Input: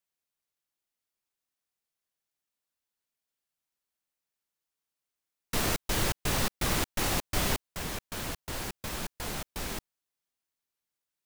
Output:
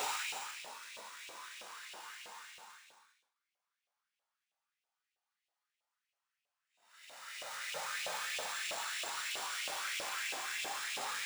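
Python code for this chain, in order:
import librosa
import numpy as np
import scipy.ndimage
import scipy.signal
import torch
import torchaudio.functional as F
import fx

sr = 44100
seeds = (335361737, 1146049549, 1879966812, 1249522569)

y = fx.bit_reversed(x, sr, seeds[0], block=64)
y = fx.high_shelf(y, sr, hz=4300.0, db=-9.5)
y = y + 10.0 ** (-17.0 / 20.0) * np.pad(y, (int(1145 * sr / 1000.0), 0))[:len(y)]
y = fx.paulstretch(y, sr, seeds[1], factor=38.0, window_s=0.05, from_s=7.56)
y = np.repeat(y[::3], 3)[:len(y)]
y = fx.filter_lfo_highpass(y, sr, shape='saw_up', hz=3.1, low_hz=570.0, high_hz=2800.0, q=3.1)
y = y * 10.0 ** (1.0 / 20.0)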